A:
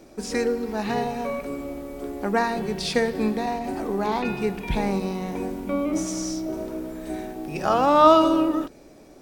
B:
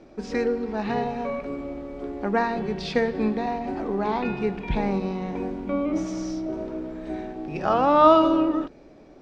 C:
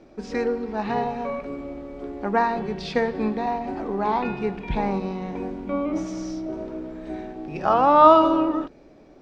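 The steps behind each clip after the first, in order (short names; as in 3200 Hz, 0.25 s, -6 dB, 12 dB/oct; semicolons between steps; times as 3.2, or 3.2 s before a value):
air absorption 180 m
dynamic EQ 960 Hz, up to +6 dB, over -35 dBFS, Q 1.4; gain -1 dB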